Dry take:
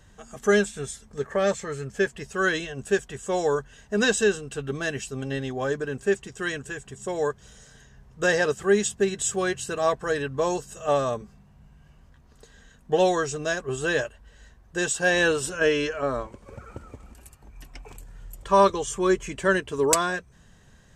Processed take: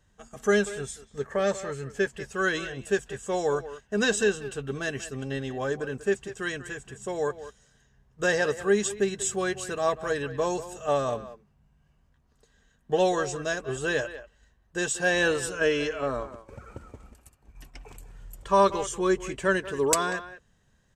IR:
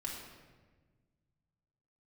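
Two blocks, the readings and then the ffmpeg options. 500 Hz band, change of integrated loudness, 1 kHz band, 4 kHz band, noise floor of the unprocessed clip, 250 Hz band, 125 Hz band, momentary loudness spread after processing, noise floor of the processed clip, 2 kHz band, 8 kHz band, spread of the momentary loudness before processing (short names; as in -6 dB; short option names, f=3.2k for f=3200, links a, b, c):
-2.5 dB, -2.5 dB, -2.5 dB, -2.5 dB, -55 dBFS, -2.5 dB, -2.5 dB, 13 LU, -66 dBFS, -2.5 dB, -2.5 dB, 13 LU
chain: -filter_complex "[0:a]agate=range=-9dB:threshold=-46dB:ratio=16:detection=peak,asplit=2[a][b];[b]adelay=190,highpass=300,lowpass=3.4k,asoftclip=type=hard:threshold=-16dB,volume=-13dB[c];[a][c]amix=inputs=2:normalize=0,volume=-2.5dB"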